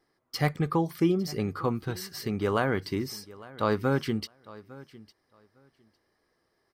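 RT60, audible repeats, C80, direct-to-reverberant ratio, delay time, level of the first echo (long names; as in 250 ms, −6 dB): no reverb audible, 1, no reverb audible, no reverb audible, 855 ms, −20.0 dB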